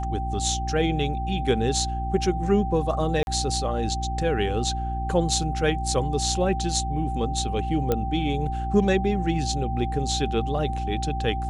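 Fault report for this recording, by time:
hum 60 Hz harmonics 6 -29 dBFS
tone 780 Hz -30 dBFS
3.23–3.27 gap 41 ms
7.92 pop -10 dBFS

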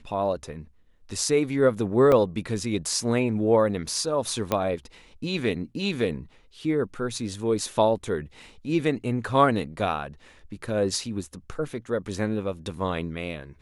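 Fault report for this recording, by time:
2.12 gap 3 ms
4.52 pop -10 dBFS

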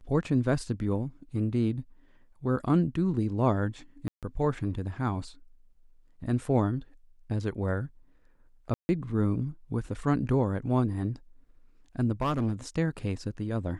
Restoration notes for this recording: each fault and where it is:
4.08–4.23 gap 0.147 s
8.74–8.89 gap 0.15 s
12.21–12.53 clipped -23.5 dBFS

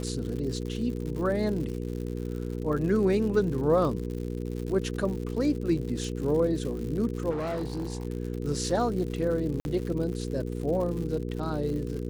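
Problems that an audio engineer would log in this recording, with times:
crackle 130/s -35 dBFS
hum 60 Hz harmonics 8 -33 dBFS
7.3–8.05 clipped -28 dBFS
9.6–9.65 gap 51 ms

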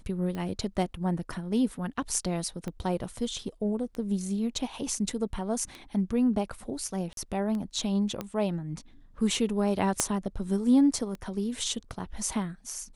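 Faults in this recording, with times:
tick 33 1/3 rpm -24 dBFS
2.68 pop -23 dBFS
7.13–7.17 gap 42 ms
8.21 pop -19 dBFS
10 pop -8 dBFS

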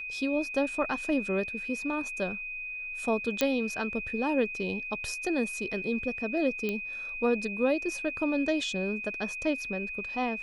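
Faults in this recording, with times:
tone 2500 Hz -35 dBFS
3.41 pop -10 dBFS
6.69 pop -18 dBFS

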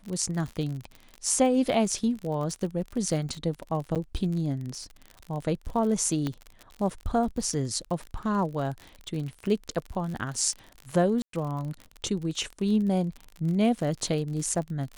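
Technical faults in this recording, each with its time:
crackle 48/s -33 dBFS
3.95–3.96 gap 7.9 ms
6.27 pop -17 dBFS
11.22–11.33 gap 0.113 s

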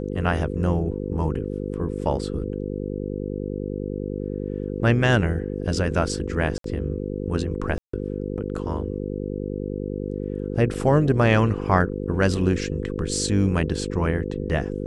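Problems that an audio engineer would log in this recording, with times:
buzz 50 Hz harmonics 10 -29 dBFS
2.01 gap 2.5 ms
6.58–6.64 gap 63 ms
7.78–7.93 gap 0.154 s
10.74 gap 3.7 ms

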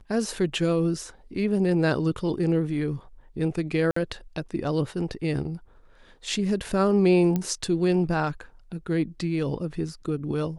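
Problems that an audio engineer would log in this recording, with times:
3.91–3.96 gap 54 ms
7.36 pop -14 dBFS

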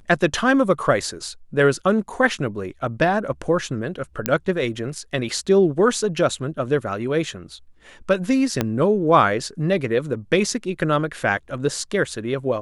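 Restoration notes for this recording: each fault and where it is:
4.26 pop -3 dBFS
8.61 pop -5 dBFS

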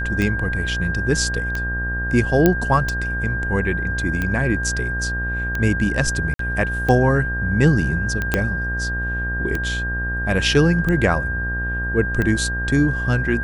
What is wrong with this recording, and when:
buzz 60 Hz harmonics 32 -26 dBFS
tick 45 rpm -11 dBFS
tone 1600 Hz -24 dBFS
2.46 pop -2 dBFS
6.34–6.39 gap 53 ms
8.34 pop -4 dBFS

